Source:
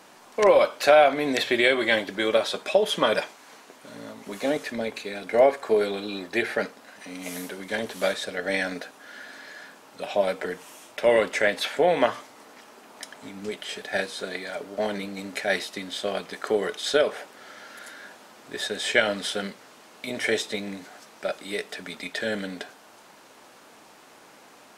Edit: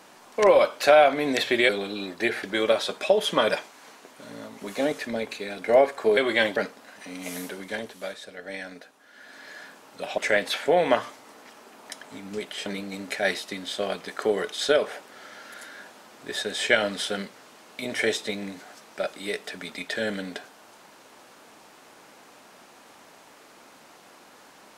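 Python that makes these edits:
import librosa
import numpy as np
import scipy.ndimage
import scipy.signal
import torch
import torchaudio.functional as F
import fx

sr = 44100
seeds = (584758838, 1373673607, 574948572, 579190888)

y = fx.edit(x, sr, fx.swap(start_s=1.69, length_s=0.39, other_s=5.82, other_length_s=0.74),
    fx.fade_down_up(start_s=7.56, length_s=1.98, db=-10.0, fade_s=0.42),
    fx.cut(start_s=10.18, length_s=1.11),
    fx.cut(start_s=13.77, length_s=1.14), tone=tone)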